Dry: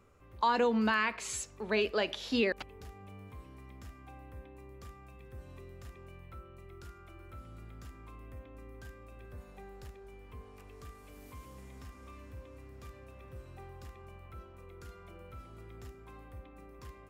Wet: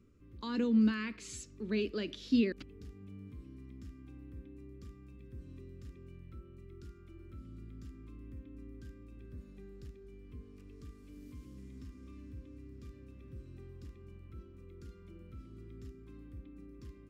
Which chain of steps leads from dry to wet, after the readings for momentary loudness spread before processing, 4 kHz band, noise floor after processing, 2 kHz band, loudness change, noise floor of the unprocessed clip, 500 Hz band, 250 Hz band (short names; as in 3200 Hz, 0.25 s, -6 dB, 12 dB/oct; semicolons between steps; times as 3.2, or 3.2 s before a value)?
21 LU, -7.0 dB, -55 dBFS, -10.5 dB, -7.0 dB, -54 dBFS, -6.5 dB, +4.0 dB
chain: EQ curve 110 Hz 0 dB, 300 Hz +6 dB, 800 Hz -25 dB, 1200 Hz -13 dB, 5100 Hz -5 dB, 12000 Hz -13 dB